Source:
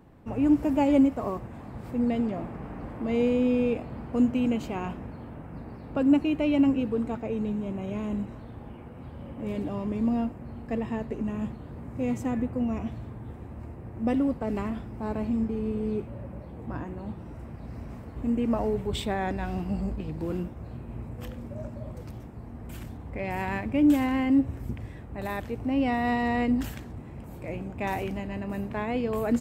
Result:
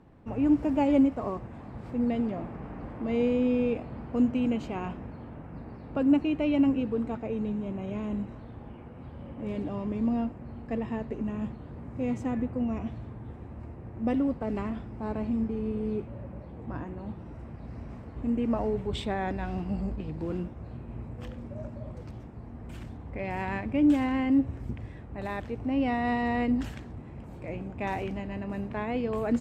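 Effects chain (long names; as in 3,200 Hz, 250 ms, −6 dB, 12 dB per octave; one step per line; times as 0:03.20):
high-frequency loss of the air 64 metres
level −1.5 dB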